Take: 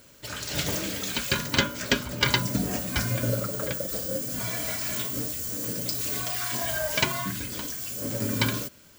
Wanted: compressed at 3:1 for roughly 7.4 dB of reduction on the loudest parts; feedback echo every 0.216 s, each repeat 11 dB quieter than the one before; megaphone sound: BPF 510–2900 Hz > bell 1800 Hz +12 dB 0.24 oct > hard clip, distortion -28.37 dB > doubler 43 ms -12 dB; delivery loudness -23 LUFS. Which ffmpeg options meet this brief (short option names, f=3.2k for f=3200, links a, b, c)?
-filter_complex "[0:a]acompressor=threshold=-28dB:ratio=3,highpass=510,lowpass=2.9k,equalizer=f=1.8k:t=o:w=0.24:g=12,aecho=1:1:216|432|648:0.282|0.0789|0.0221,asoftclip=type=hard:threshold=-17.5dB,asplit=2[a][b];[b]adelay=43,volume=-12dB[c];[a][c]amix=inputs=2:normalize=0,volume=12dB"